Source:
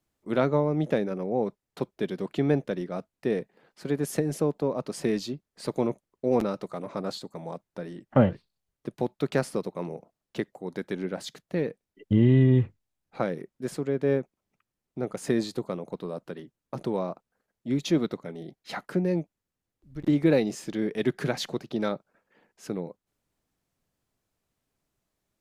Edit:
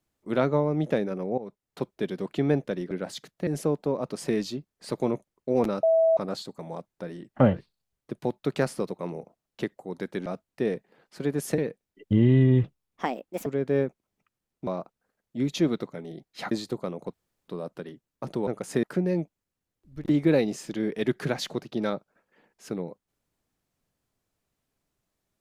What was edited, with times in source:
1.38–1.93 fade in equal-power, from -16.5 dB
2.91–4.23 swap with 11.02–11.58
6.59–6.93 bleep 652 Hz -17 dBFS
12.64–13.8 speed 141%
15.01–15.37 swap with 16.98–18.82
15.99 insert room tone 0.35 s

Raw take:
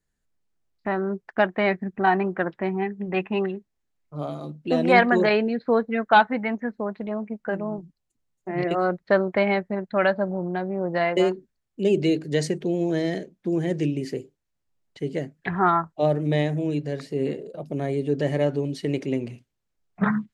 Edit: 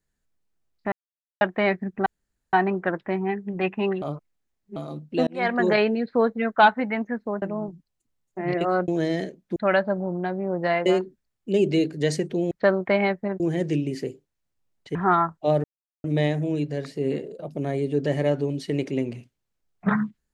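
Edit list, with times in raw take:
0.92–1.41 mute
2.06 insert room tone 0.47 s
3.55–4.29 reverse
4.8–5.25 fade in
6.95–7.52 cut
8.98–9.87 swap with 12.82–13.5
15.05–15.5 cut
16.19 insert silence 0.40 s

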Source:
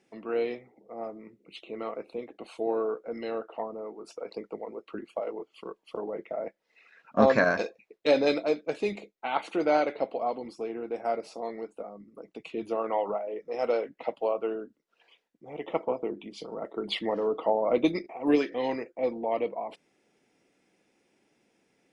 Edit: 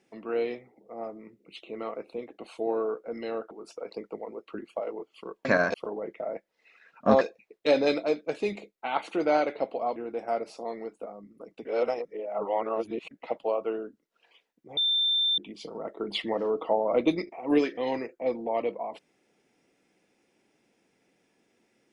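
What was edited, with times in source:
3.51–3.91 cut
7.32–7.61 move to 5.85
10.36–10.73 cut
12.42–13.88 reverse
15.54–16.15 bleep 3570 Hz -22 dBFS

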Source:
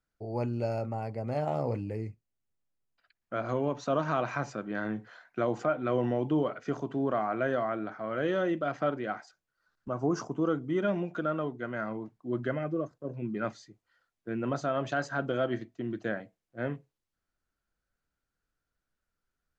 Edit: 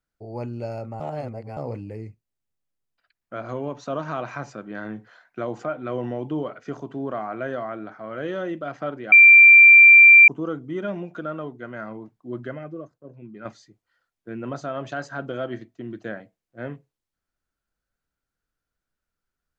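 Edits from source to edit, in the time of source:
1–1.57 reverse
9.12–10.28 bleep 2360 Hz -6 dBFS
12.31–13.45 fade out quadratic, to -7.5 dB

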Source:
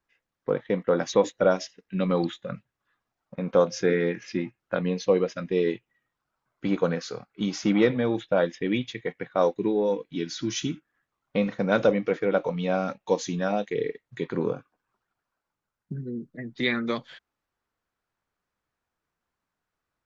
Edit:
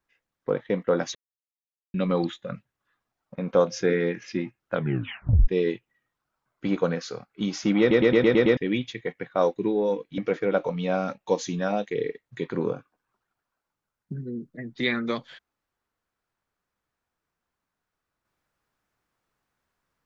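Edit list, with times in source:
1.15–1.94 mute
4.74 tape stop 0.74 s
7.8 stutter in place 0.11 s, 7 plays
10.18–11.98 cut

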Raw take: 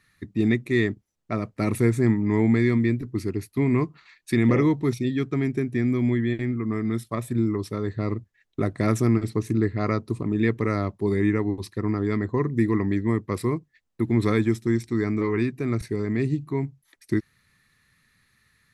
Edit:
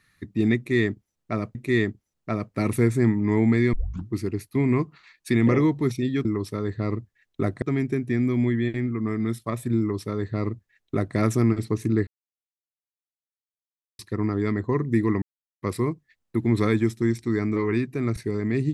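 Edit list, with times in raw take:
0.57–1.55 loop, 2 plays
2.75 tape start 0.38 s
7.44–8.81 copy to 5.27
9.72–11.64 mute
12.87–13.27 mute

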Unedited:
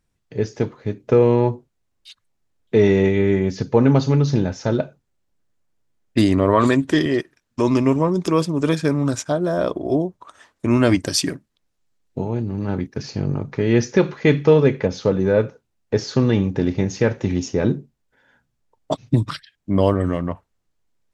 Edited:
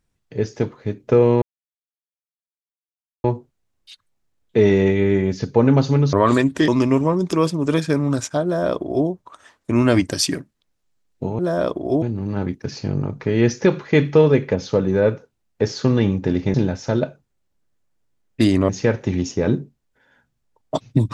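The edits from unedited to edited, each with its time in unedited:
1.42 insert silence 1.82 s
4.31–6.46 move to 16.86
7.01–7.63 cut
9.39–10.02 copy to 12.34

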